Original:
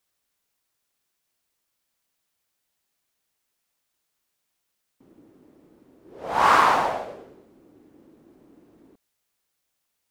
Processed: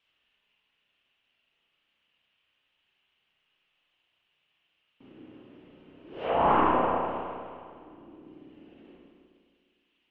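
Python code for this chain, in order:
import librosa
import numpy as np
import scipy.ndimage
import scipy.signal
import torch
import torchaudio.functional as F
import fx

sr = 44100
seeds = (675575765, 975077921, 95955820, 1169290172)

y = np.minimum(x, 2.0 * 10.0 ** (-10.5 / 20.0) - x)
y = fx.dereverb_blind(y, sr, rt60_s=1.9)
y = fx.env_lowpass_down(y, sr, base_hz=550.0, full_db=-26.0)
y = fx.lowpass_res(y, sr, hz=2900.0, q=6.0)
y = fx.rev_spring(y, sr, rt60_s=2.1, pass_ms=(32, 51), chirp_ms=65, drr_db=-5.0)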